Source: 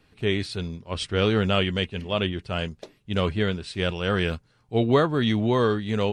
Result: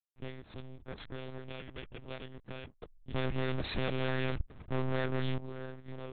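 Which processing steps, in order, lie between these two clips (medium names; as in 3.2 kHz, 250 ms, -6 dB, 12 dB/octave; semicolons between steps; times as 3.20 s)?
comb filter that takes the minimum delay 0.49 ms; dynamic bell 110 Hz, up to -8 dB, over -42 dBFS, Q 1.6; compression 8:1, threshold -39 dBFS, peak gain reduction 21 dB; 3.14–5.38 s: waveshaping leveller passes 5; hysteresis with a dead band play -39.5 dBFS; monotone LPC vocoder at 8 kHz 130 Hz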